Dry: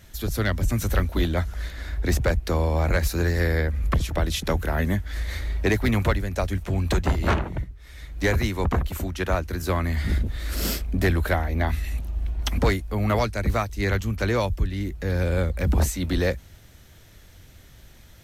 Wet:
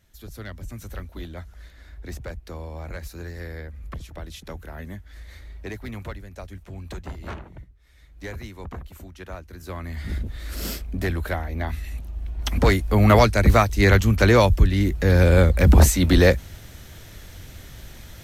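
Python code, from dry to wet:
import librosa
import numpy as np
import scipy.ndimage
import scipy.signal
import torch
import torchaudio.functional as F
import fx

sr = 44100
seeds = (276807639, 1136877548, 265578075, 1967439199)

y = fx.gain(x, sr, db=fx.line((9.47, -13.0), (10.23, -4.0), (12.27, -4.0), (12.92, 8.0)))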